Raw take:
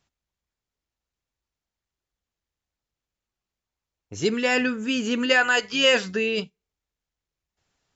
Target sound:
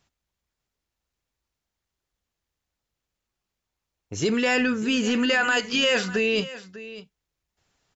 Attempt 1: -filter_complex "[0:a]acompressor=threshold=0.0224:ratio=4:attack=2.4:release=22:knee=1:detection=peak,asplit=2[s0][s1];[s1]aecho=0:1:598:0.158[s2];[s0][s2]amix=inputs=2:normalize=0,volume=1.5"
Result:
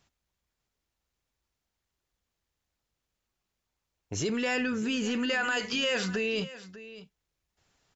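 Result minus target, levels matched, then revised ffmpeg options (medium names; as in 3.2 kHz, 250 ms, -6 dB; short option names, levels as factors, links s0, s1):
compression: peak gain reduction +7 dB
-filter_complex "[0:a]acompressor=threshold=0.0668:ratio=4:attack=2.4:release=22:knee=1:detection=peak,asplit=2[s0][s1];[s1]aecho=0:1:598:0.158[s2];[s0][s2]amix=inputs=2:normalize=0,volume=1.5"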